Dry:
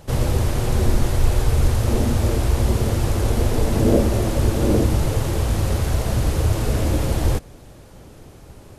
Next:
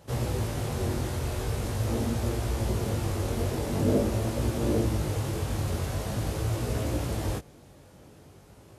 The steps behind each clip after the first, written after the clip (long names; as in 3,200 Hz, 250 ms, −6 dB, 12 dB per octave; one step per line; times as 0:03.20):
high-pass filter 73 Hz
chorus effect 0.44 Hz, delay 17 ms, depth 4.8 ms
level −4.5 dB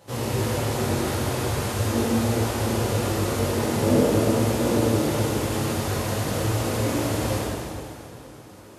high-pass filter 220 Hz 6 dB per octave
dense smooth reverb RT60 2.7 s, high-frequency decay 0.85×, DRR −6 dB
level +2 dB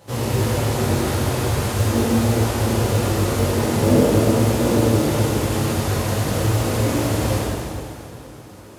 low-shelf EQ 120 Hz +5 dB
in parallel at −7 dB: floating-point word with a short mantissa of 2 bits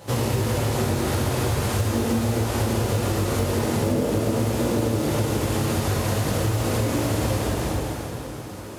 downward compressor 6 to 1, threshold −25 dBFS, peak gain reduction 14 dB
level +5 dB